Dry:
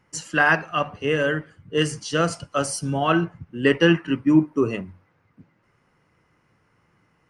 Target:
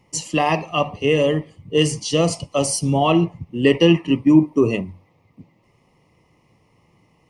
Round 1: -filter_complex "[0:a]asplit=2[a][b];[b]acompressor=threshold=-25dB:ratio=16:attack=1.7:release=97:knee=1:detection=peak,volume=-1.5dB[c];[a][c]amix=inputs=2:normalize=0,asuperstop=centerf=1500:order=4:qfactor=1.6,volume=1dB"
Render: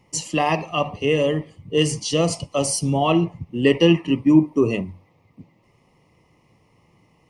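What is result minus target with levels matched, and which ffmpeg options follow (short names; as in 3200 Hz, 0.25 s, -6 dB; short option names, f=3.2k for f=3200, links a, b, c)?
compressor: peak gain reduction +7 dB
-filter_complex "[0:a]asplit=2[a][b];[b]acompressor=threshold=-17.5dB:ratio=16:attack=1.7:release=97:knee=1:detection=peak,volume=-1.5dB[c];[a][c]amix=inputs=2:normalize=0,asuperstop=centerf=1500:order=4:qfactor=1.6,volume=1dB"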